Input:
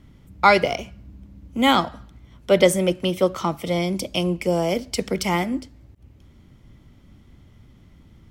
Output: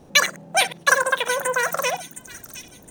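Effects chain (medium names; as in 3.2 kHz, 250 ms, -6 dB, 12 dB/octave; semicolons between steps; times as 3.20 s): chunks repeated in reverse 148 ms, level -12.5 dB; wide varispeed 2.86×; feedback echo behind a high-pass 714 ms, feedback 32%, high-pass 3.6 kHz, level -8 dB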